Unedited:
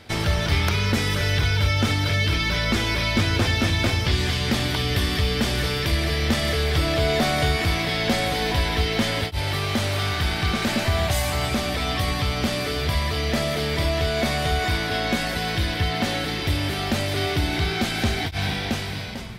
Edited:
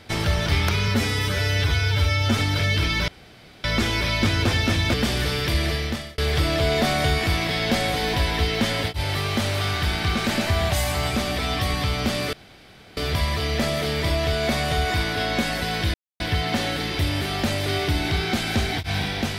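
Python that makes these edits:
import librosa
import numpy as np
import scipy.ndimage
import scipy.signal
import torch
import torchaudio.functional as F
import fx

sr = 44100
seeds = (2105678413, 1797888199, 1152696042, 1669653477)

y = fx.edit(x, sr, fx.stretch_span(start_s=0.88, length_s=1.0, factor=1.5),
    fx.insert_room_tone(at_s=2.58, length_s=0.56),
    fx.cut(start_s=3.88, length_s=1.44),
    fx.fade_out_span(start_s=6.06, length_s=0.5),
    fx.insert_room_tone(at_s=12.71, length_s=0.64),
    fx.insert_silence(at_s=15.68, length_s=0.26), tone=tone)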